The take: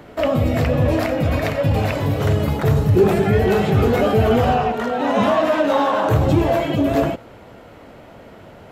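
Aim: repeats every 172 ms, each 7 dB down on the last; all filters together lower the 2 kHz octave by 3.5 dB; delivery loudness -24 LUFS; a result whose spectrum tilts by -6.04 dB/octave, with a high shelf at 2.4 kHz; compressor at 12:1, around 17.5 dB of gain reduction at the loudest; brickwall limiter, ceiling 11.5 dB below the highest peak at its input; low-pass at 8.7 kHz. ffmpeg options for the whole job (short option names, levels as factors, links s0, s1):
-af "lowpass=8700,equalizer=f=2000:t=o:g=-8.5,highshelf=f=2400:g=7.5,acompressor=threshold=0.0355:ratio=12,alimiter=level_in=2.24:limit=0.0631:level=0:latency=1,volume=0.447,aecho=1:1:172|344|516|688|860:0.447|0.201|0.0905|0.0407|0.0183,volume=5.31"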